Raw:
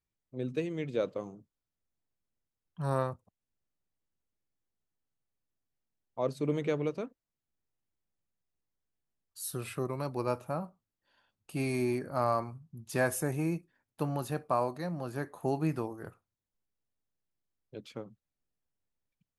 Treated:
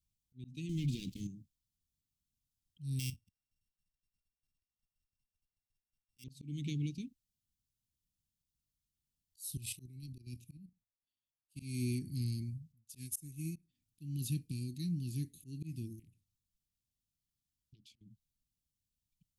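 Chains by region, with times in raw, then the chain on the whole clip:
0.69–1.27 s: treble shelf 9 kHz +7 dB + waveshaping leveller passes 3 + compression 2:1, threshold -35 dBFS
2.99–6.24 s: sorted samples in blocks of 16 samples + level held to a coarse grid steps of 12 dB
9.57–11.62 s: level held to a coarse grid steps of 11 dB + three bands expanded up and down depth 70%
12.72–13.56 s: treble shelf 5.8 kHz +9 dB + upward expansion 2.5:1, over -44 dBFS
15.99–18.01 s: compression 5:1, threshold -58 dBFS + loudspeaker Doppler distortion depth 0.5 ms
whole clip: inverse Chebyshev band-stop 570–1500 Hz, stop band 50 dB; amplifier tone stack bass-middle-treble 6-0-2; slow attack 274 ms; trim +18 dB

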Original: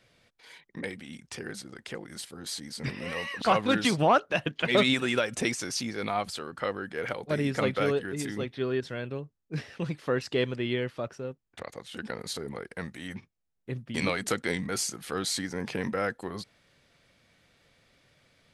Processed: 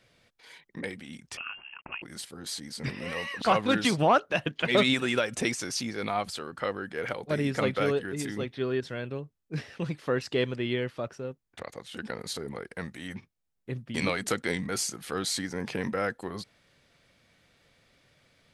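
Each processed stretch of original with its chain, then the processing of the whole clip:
1.37–2.02 s: high-pass 140 Hz 24 dB/octave + small samples zeroed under -57 dBFS + frequency inversion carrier 3 kHz
whole clip: none

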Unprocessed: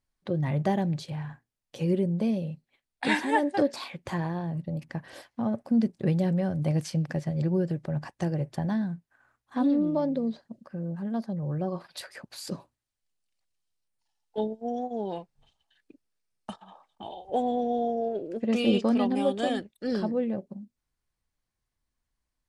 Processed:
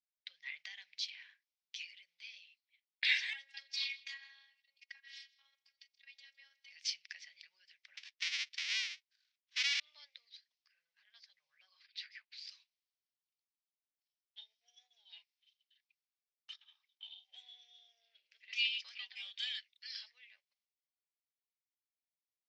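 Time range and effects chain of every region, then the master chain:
3.33–6.72 s: compression 3:1, threshold -29 dBFS + delay 160 ms -20.5 dB + robot voice 274 Hz
7.97–9.80 s: square wave that keeps the level + upward expansion, over -36 dBFS
11.86–12.49 s: low-pass 4.2 kHz + treble shelf 2.3 kHz -6.5 dB
whole clip: compression, threshold -26 dBFS; elliptic band-pass 2.1–5.6 kHz, stop band 80 dB; three bands expanded up and down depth 40%; trim +3.5 dB

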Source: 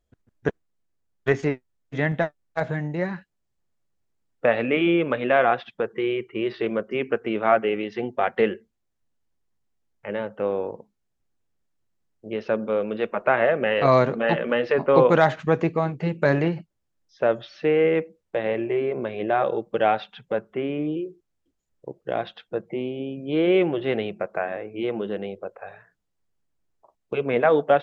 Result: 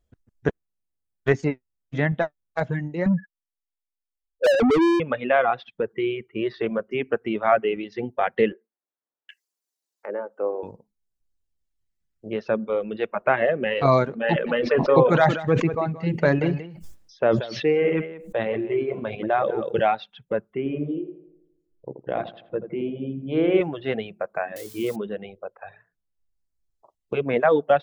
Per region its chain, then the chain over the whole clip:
3.06–5.00 s: spectral contrast enhancement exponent 3.7 + overdrive pedal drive 34 dB, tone 3 kHz, clips at -12.5 dBFS
8.52–10.63 s: high-pass 310 Hz 24 dB/octave + bands offset in time lows, highs 770 ms, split 1.7 kHz + tape noise reduction on one side only encoder only
14.28–19.83 s: delay 181 ms -8 dB + decay stretcher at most 49 dB/s
20.57–23.61 s: distance through air 220 m + hum notches 60/120/180/240/300/360/420 Hz + filtered feedback delay 82 ms, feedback 57%, low-pass 2.2 kHz, level -5 dB
24.56–24.96 s: zero-crossing glitches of -26 dBFS + band-stop 860 Hz, Q 16
whole clip: bass shelf 210 Hz +4.5 dB; reverb removal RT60 1.7 s

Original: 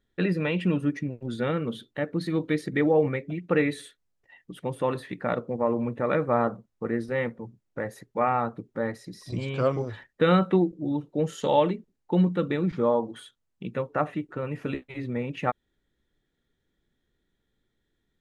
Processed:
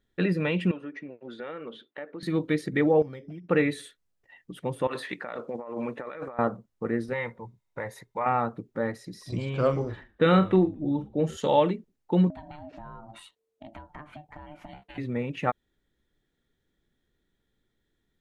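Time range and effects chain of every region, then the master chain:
0.71–2.23 s: band-pass 420–2900 Hz + compression 3:1, threshold -35 dBFS
3.02–3.49 s: careless resampling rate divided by 8×, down none, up hold + distance through air 400 m + compression 5:1, threshold -37 dBFS
4.87–6.39 s: frequency weighting A + compressor with a negative ratio -36 dBFS
7.13–8.26 s: peaking EQ 260 Hz -9 dB 1 oct + small resonant body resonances 960/2100/3700 Hz, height 11 dB, ringing for 25 ms + compression 2:1, threshold -29 dBFS
9.42–11.37 s: doubling 43 ms -11 dB + frequency-shifting echo 115 ms, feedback 35%, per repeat -81 Hz, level -23 dB + tape noise reduction on one side only decoder only
12.30–14.98 s: ring modulator 450 Hz + compression, threshold -40 dBFS
whole clip: none

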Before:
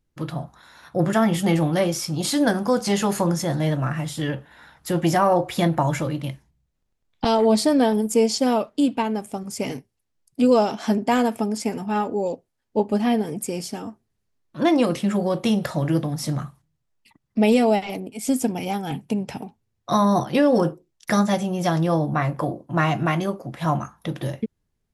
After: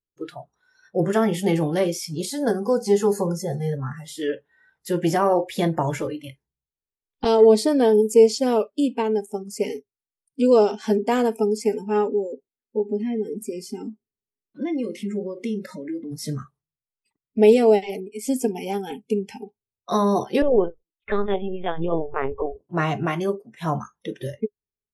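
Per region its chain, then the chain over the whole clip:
2.25–4.05 s: peaking EQ 2.7 kHz -8.5 dB 1.2 oct + comb of notches 310 Hz
12.09–16.12 s: compression 3:1, threshold -32 dBFS + small resonant body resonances 250/2100 Hz, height 9 dB, ringing for 20 ms
20.42–22.56 s: LFO notch square 2.2 Hz 360–1700 Hz + LPC vocoder at 8 kHz pitch kept
whole clip: spectral noise reduction 21 dB; peaking EQ 420 Hz +13.5 dB 0.32 oct; trim -3 dB

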